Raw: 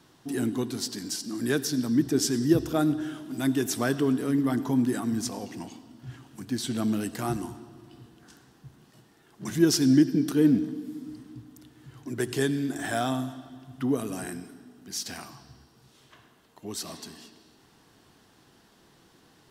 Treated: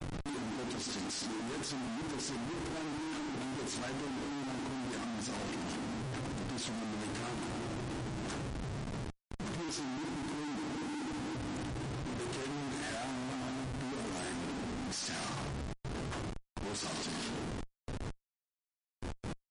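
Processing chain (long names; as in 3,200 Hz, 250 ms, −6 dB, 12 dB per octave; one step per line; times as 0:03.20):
noise gate with hold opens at −48 dBFS
reversed playback
downward compressor 16 to 1, threshold −36 dBFS, peak gain reduction 22 dB
reversed playback
pitch vibrato 4 Hz 53 cents
on a send at −12 dB: convolution reverb RT60 0.25 s, pre-delay 29 ms
on the sum: comparator with hysteresis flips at −53.5 dBFS
level +3 dB
MP3 40 kbit/s 32,000 Hz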